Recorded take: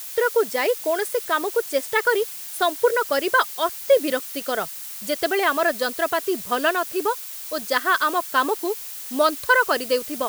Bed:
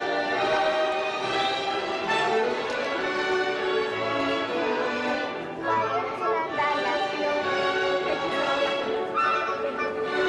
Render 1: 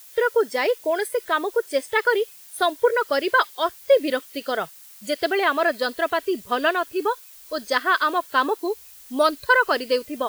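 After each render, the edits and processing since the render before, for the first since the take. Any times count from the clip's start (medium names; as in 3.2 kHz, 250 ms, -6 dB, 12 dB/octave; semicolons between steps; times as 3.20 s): noise print and reduce 11 dB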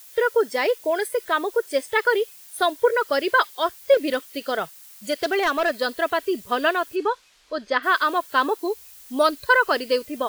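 3.94–5.75 s: hard clipper -16 dBFS; 6.95–7.82 s: low-pass 5.9 kHz -> 3 kHz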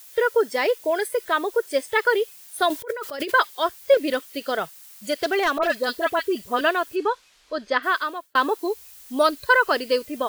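2.70–3.32 s: compressor with a negative ratio -30 dBFS; 5.58–6.61 s: phase dispersion highs, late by 48 ms, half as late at 1.5 kHz; 7.78–8.35 s: fade out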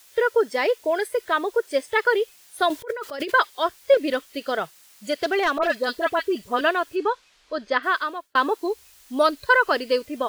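treble shelf 9.3 kHz -10 dB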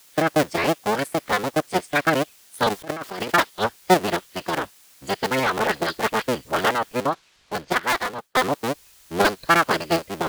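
cycle switcher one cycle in 3, inverted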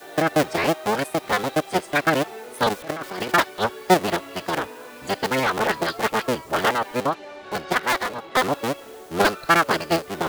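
add bed -14 dB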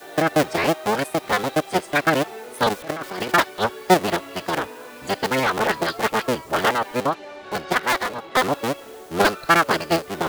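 trim +1 dB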